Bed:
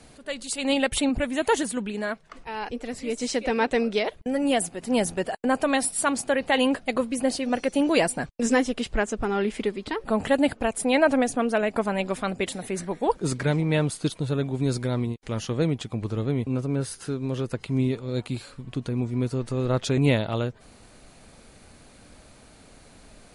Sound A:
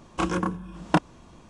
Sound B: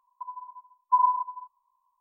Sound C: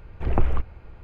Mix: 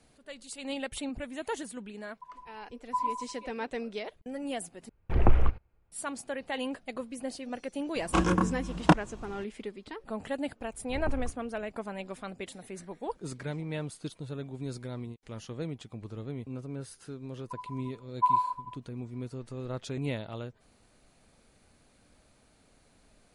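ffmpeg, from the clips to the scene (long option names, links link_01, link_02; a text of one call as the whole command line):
ffmpeg -i bed.wav -i cue0.wav -i cue1.wav -i cue2.wav -filter_complex "[2:a]asplit=2[link_01][link_02];[3:a]asplit=2[link_03][link_04];[0:a]volume=-12.5dB[link_05];[link_03]agate=range=-25dB:threshold=-33dB:ratio=16:release=79:detection=rms[link_06];[1:a]lowshelf=frequency=84:gain=8.5[link_07];[link_04]acrossover=split=1700[link_08][link_09];[link_09]adelay=40[link_10];[link_08][link_10]amix=inputs=2:normalize=0[link_11];[link_05]asplit=2[link_12][link_13];[link_12]atrim=end=4.894[link_14];[link_06]atrim=end=1.03,asetpts=PTS-STARTPTS,volume=-0.5dB[link_15];[link_13]atrim=start=5.916[link_16];[link_01]atrim=end=2,asetpts=PTS-STARTPTS,volume=-9.5dB,afade=type=in:duration=0.004:curve=hsin,afade=type=out:start_time=1.996:duration=0.004:curve=hsin,adelay=2010[link_17];[link_07]atrim=end=1.49,asetpts=PTS-STARTPTS,afade=type=in:duration=0.004:curve=hsin,afade=type=out:start_time=1.486:duration=0.004:curve=hsin,adelay=7950[link_18];[link_11]atrim=end=1.03,asetpts=PTS-STARTPTS,volume=-13dB,afade=type=in:duration=0.004:curve=hsin,afade=type=out:start_time=1.026:duration=0.004:curve=hsin,adelay=10690[link_19];[link_02]atrim=end=2,asetpts=PTS-STARTPTS,volume=-3.5dB,afade=type=in:duration=0.004:curve=hsin,afade=type=out:start_time=1.996:duration=0.004:curve=hsin,adelay=17300[link_20];[link_14][link_15]acrossfade=duration=0.004:curve1=hsin:curve2=hsin[link_21];[link_21][link_16]acrossfade=duration=0.004:curve1=hsin:curve2=hsin[link_22];[link_22][link_17][link_18][link_19][link_20]amix=inputs=5:normalize=0" out.wav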